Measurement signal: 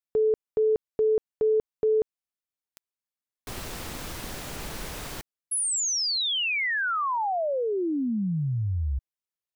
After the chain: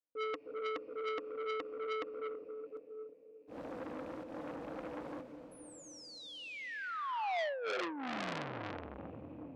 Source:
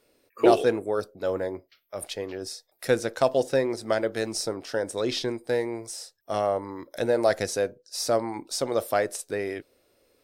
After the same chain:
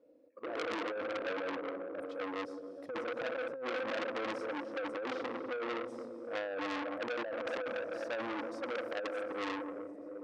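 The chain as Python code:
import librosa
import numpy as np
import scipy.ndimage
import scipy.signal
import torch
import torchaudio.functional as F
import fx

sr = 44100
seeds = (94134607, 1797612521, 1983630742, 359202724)

p1 = fx.rattle_buzz(x, sr, strikes_db=-36.0, level_db=-25.0)
p2 = 10.0 ** (-19.0 / 20.0) * (np.abs((p1 / 10.0 ** (-19.0 / 20.0) + 3.0) % 4.0 - 2.0) - 1.0)
p3 = p1 + (p2 * librosa.db_to_amplitude(-7.0))
p4 = fx.double_bandpass(p3, sr, hz=390.0, octaves=0.74)
p5 = fx.auto_swell(p4, sr, attack_ms=121.0)
p6 = fx.echo_feedback(p5, sr, ms=746, feedback_pct=34, wet_db=-21.0)
p7 = fx.rev_plate(p6, sr, seeds[0], rt60_s=3.9, hf_ratio=0.8, predelay_ms=110, drr_db=8.5)
p8 = fx.over_compress(p7, sr, threshold_db=-34.0, ratio=-1.0)
p9 = fx.transformer_sat(p8, sr, knee_hz=2800.0)
y = p9 * librosa.db_to_amplitude(2.0)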